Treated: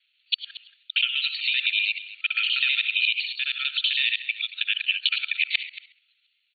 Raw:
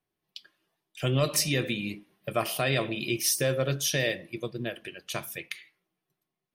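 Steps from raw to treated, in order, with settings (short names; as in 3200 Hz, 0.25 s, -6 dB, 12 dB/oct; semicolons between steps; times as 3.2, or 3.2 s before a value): local time reversal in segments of 64 ms; resonant high shelf 2100 Hz +8 dB, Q 3; in parallel at -2 dB: limiter -14.5 dBFS, peak gain reduction 10.5 dB; on the sum: compressor 6:1, threshold -28 dBFS, peak gain reduction 16 dB; FFT band-pass 1300–4500 Hz; on a send: echo 0.228 s -16.5 dB; on the sum: gain +8.5 dB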